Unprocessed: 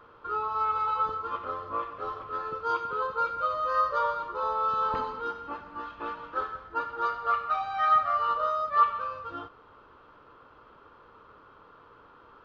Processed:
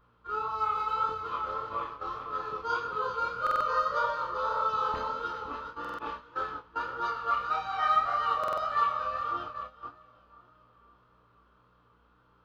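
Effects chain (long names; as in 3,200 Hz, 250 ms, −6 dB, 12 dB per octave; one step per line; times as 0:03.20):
high-shelf EQ 3,600 Hz +10 dB
echo with a time of its own for lows and highs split 1,200 Hz, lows 515 ms, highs 394 ms, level −9 dB
mains hum 60 Hz, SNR 24 dB
noise gate −36 dBFS, range −11 dB
chorus effect 1.7 Hz, depth 6.8 ms
buffer that repeats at 0:03.42/0:05.80/0:08.39, samples 2,048, times 3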